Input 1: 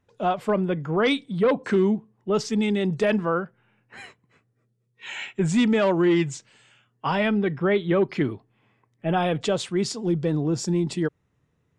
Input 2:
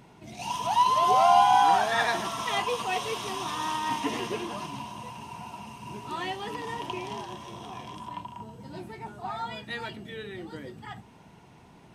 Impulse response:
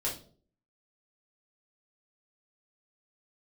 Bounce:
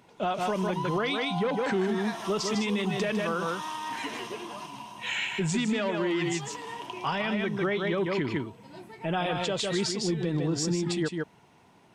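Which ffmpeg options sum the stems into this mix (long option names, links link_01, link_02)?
-filter_complex "[0:a]equalizer=frequency=3800:width=0.39:gain=7,volume=-2dB,asplit=2[link_01][link_02];[link_02]volume=-5.5dB[link_03];[1:a]highpass=frequency=260:poles=1,acompressor=threshold=-28dB:ratio=6,volume=-3dB[link_04];[link_03]aecho=0:1:153:1[link_05];[link_01][link_04][link_05]amix=inputs=3:normalize=0,alimiter=limit=-19.5dB:level=0:latency=1:release=146"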